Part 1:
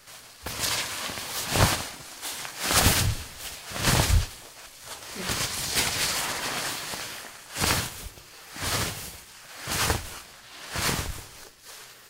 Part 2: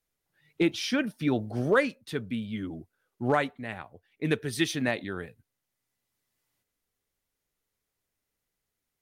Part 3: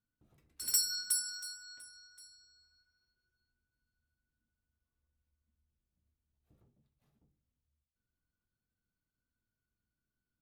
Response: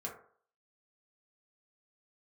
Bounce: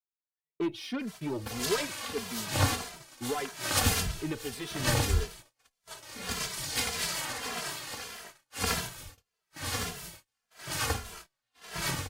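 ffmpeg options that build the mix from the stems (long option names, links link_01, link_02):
-filter_complex "[0:a]adelay=1000,volume=-5dB,asplit=2[link_01][link_02];[link_02]volume=-7dB[link_03];[1:a]asoftclip=type=tanh:threshold=-26dB,equalizer=frequency=400:width_type=o:width=0.67:gain=7,equalizer=frequency=1000:width_type=o:width=0.67:gain=4,equalizer=frequency=6300:width_type=o:width=0.67:gain=-6,volume=-3dB[link_04];[3:a]atrim=start_sample=2205[link_05];[link_03][link_05]afir=irnorm=-1:irlink=0[link_06];[link_01][link_04][link_06]amix=inputs=3:normalize=0,agate=range=-32dB:threshold=-44dB:ratio=16:detection=peak,asplit=2[link_07][link_08];[link_08]adelay=2.6,afreqshift=-1.7[link_09];[link_07][link_09]amix=inputs=2:normalize=1"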